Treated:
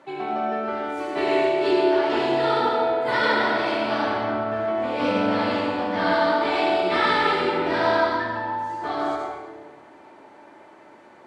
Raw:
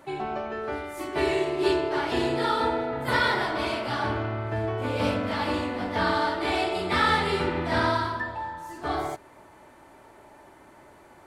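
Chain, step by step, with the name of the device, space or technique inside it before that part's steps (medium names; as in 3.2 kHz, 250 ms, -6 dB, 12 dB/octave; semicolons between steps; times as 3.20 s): supermarket ceiling speaker (band-pass 210–5300 Hz; reverberation RT60 1.5 s, pre-delay 68 ms, DRR -1 dB)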